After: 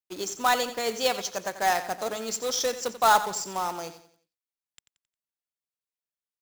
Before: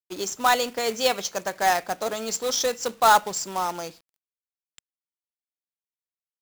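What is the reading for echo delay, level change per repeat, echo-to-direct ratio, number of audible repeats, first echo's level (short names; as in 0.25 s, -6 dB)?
89 ms, -8.0 dB, -12.5 dB, 3, -13.0 dB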